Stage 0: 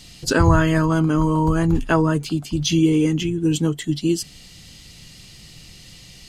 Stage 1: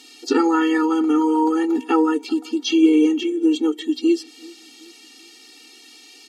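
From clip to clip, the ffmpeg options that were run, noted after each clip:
-filter_complex "[0:a]asplit=2[a][b];[b]adelay=384,lowpass=f=3.2k:p=1,volume=-24dB,asplit=2[c][d];[d]adelay=384,lowpass=f=3.2k:p=1,volume=0.46,asplit=2[e][f];[f]adelay=384,lowpass=f=3.2k:p=1,volume=0.46[g];[a][c][e][g]amix=inputs=4:normalize=0,acrossover=split=5500[h][i];[i]acompressor=threshold=-50dB:ratio=4:attack=1:release=60[j];[h][j]amix=inputs=2:normalize=0,afftfilt=real='re*eq(mod(floor(b*sr/1024/240),2),1)':imag='im*eq(mod(floor(b*sr/1024/240),2),1)':win_size=1024:overlap=0.75,volume=3.5dB"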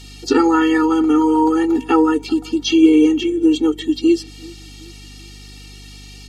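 -af "aeval=exprs='val(0)+0.00794*(sin(2*PI*50*n/s)+sin(2*PI*2*50*n/s)/2+sin(2*PI*3*50*n/s)/3+sin(2*PI*4*50*n/s)/4+sin(2*PI*5*50*n/s)/5)':c=same,volume=3.5dB"

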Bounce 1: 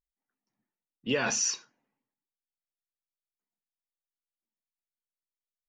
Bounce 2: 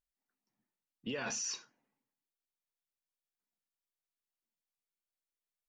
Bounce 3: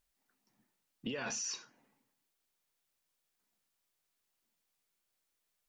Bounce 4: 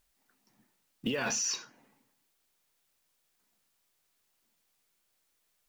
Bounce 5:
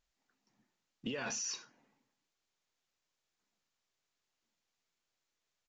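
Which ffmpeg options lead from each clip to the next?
-af "alimiter=level_in=4dB:limit=-24dB:level=0:latency=1:release=26,volume=-4dB,volume=-2dB"
-af "acompressor=threshold=-51dB:ratio=3,volume=10.5dB"
-af "acrusher=bits=7:mode=log:mix=0:aa=0.000001,volume=7dB"
-af "aresample=16000,aresample=44100,volume=-7dB"

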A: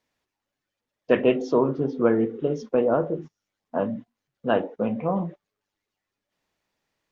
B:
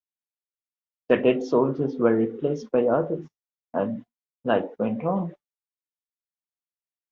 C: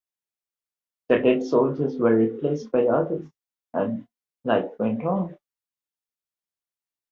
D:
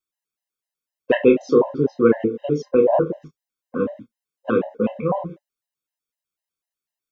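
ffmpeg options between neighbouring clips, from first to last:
-af "agate=range=-33dB:threshold=-36dB:ratio=3:detection=peak"
-filter_complex "[0:a]asplit=2[a][b];[b]adelay=27,volume=-7dB[c];[a][c]amix=inputs=2:normalize=0"
-af "equalizer=f=85:t=o:w=1.5:g=-3.5,afftfilt=real='re*gt(sin(2*PI*4*pts/sr)*(1-2*mod(floor(b*sr/1024/530),2)),0)':imag='im*gt(sin(2*PI*4*pts/sr)*(1-2*mod(floor(b*sr/1024/530),2)),0)':win_size=1024:overlap=0.75,volume=6dB"

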